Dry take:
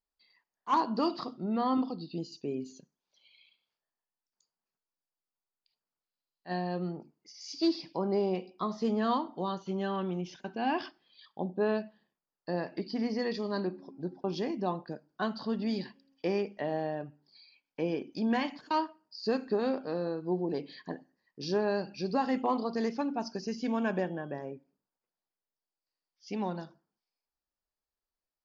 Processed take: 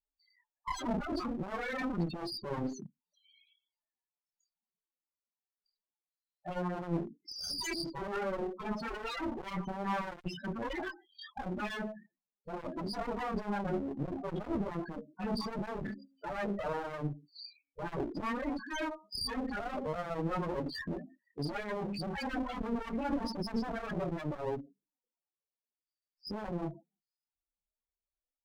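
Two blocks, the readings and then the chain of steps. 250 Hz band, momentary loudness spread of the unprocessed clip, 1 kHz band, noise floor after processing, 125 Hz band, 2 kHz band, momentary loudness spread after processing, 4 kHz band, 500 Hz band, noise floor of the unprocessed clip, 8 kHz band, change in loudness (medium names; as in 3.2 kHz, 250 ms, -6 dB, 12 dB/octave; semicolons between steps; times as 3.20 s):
-4.5 dB, 13 LU, -4.5 dB, under -85 dBFS, 0.0 dB, +0.5 dB, 8 LU, +0.5 dB, -5.5 dB, under -85 dBFS, no reading, -4.5 dB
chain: gate -58 dBFS, range -15 dB; sine folder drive 17 dB, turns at -18.5 dBFS; chorus voices 2, 0.75 Hz, delay 27 ms, depth 2.8 ms; loudest bins only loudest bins 8; one-sided clip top -35.5 dBFS; trim -3.5 dB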